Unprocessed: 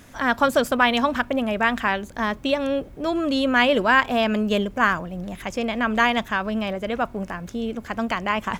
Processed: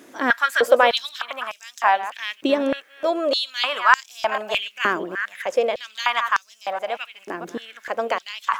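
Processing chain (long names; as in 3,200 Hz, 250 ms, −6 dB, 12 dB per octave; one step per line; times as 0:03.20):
delay that plays each chunk backwards 219 ms, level −13 dB
high-pass on a step sequencer 3.3 Hz 340–5,900 Hz
level −1 dB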